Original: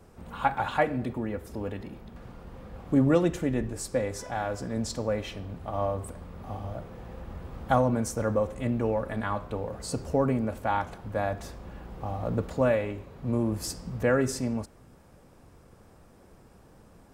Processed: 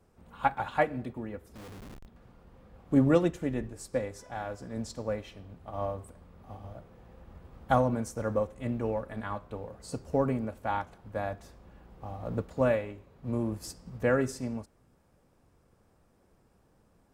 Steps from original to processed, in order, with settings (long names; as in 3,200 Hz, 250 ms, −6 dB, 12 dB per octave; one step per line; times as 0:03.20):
0:01.55–0:02.06: comparator with hysteresis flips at −41 dBFS
expander for the loud parts 1.5 to 1, over −40 dBFS